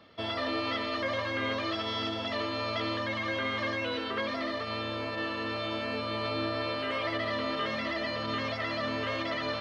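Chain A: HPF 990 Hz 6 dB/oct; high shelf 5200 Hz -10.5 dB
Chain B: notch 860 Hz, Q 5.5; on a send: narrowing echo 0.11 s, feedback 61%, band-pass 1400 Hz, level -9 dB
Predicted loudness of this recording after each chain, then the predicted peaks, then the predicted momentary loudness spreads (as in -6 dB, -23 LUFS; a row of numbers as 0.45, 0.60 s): -36.0, -32.0 LUFS; -24.0, -20.0 dBFS; 3, 2 LU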